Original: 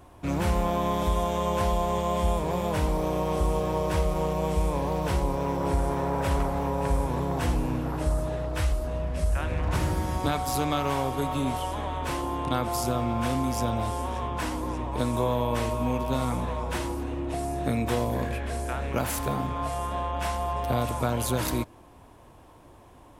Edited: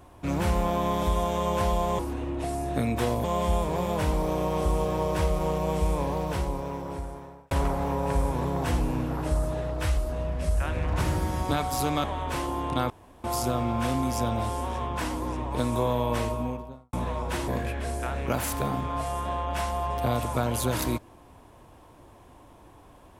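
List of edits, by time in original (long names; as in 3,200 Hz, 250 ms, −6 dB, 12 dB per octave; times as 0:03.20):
0:04.74–0:06.26: fade out
0:10.79–0:11.79: remove
0:12.65: splice in room tone 0.34 s
0:15.57–0:16.34: fade out and dull
0:16.89–0:18.14: move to 0:01.99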